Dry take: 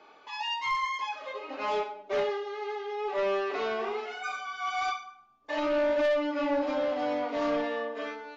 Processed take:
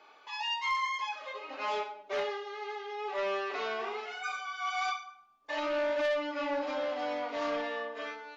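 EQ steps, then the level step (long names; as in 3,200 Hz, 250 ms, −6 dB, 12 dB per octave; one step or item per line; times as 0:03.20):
low-shelf EQ 490 Hz −11 dB
0.0 dB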